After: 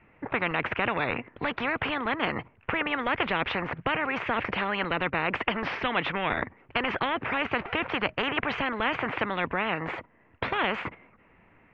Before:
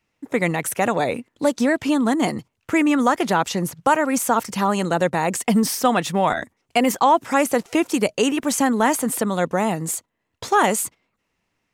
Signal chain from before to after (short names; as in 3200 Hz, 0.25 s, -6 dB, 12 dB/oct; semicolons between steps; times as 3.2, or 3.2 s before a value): steep low-pass 2400 Hz 36 dB/oct; spectral compressor 4:1; gain -2 dB